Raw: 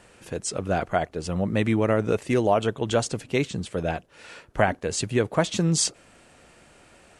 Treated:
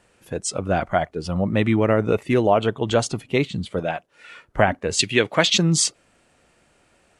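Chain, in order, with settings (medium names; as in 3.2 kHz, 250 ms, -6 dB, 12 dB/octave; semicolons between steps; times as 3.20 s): 3.79–4.31 s: bass shelf 110 Hz -12 dB; spectral noise reduction 10 dB; 4.99–5.58 s: frequency weighting D; trim +3.5 dB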